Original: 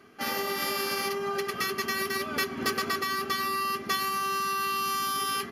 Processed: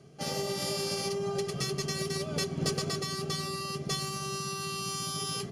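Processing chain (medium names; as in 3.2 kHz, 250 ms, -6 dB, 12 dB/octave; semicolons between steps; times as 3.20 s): FFT filter 100 Hz 0 dB, 150 Hz +13 dB, 230 Hz -10 dB, 610 Hz -2 dB, 1 kHz -15 dB, 1.7 kHz -19 dB, 3.3 kHz -9 dB, 8.7 kHz +1 dB, 15 kHz -28 dB; Chebyshev shaper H 4 -14 dB, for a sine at -8.5 dBFS; trim +5 dB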